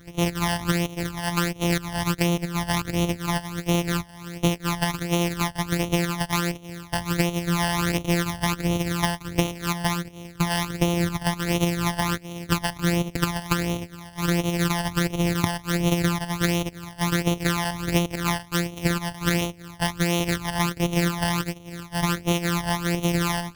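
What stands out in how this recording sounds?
a buzz of ramps at a fixed pitch in blocks of 256 samples; phasing stages 12, 1.4 Hz, lowest notch 400–1600 Hz

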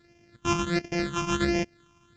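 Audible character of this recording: a buzz of ramps at a fixed pitch in blocks of 128 samples; phasing stages 8, 1.4 Hz, lowest notch 550–1200 Hz; µ-law

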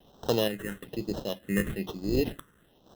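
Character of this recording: a quantiser's noise floor 10-bit, dither none; random-step tremolo 4.2 Hz; aliases and images of a low sample rate 2300 Hz, jitter 0%; phasing stages 4, 1.1 Hz, lowest notch 750–2100 Hz

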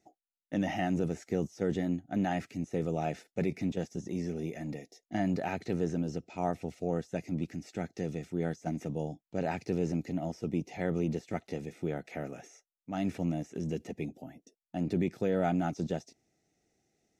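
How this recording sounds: noise floor -93 dBFS; spectral tilt -6.0 dB/oct

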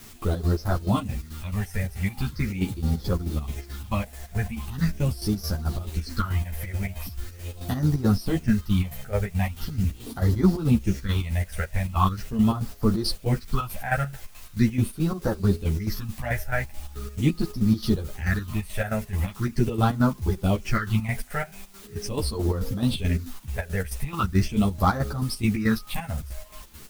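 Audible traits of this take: phasing stages 6, 0.41 Hz, lowest notch 290–2600 Hz; a quantiser's noise floor 8-bit, dither triangular; chopped level 4.6 Hz, depth 65%, duty 55%; a shimmering, thickened sound

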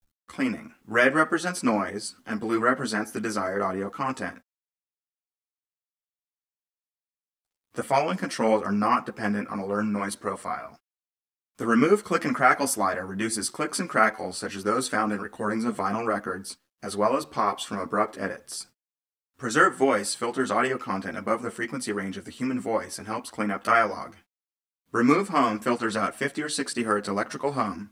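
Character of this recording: a quantiser's noise floor 12-bit, dither none; a shimmering, thickened sound

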